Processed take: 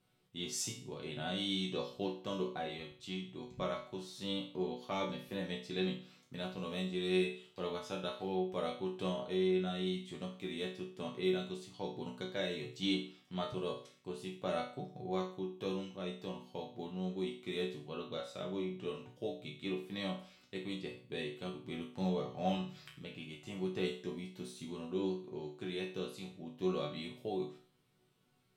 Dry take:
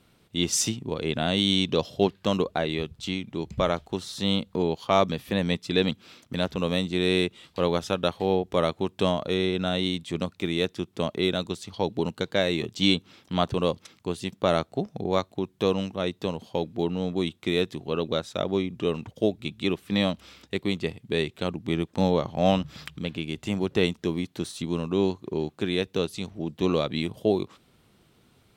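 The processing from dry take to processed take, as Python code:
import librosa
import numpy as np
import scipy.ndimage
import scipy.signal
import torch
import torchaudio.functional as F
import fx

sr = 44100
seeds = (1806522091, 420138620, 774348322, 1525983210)

y = fx.resonator_bank(x, sr, root=47, chord='minor', decay_s=0.43)
y = y * 10.0 ** (2.5 / 20.0)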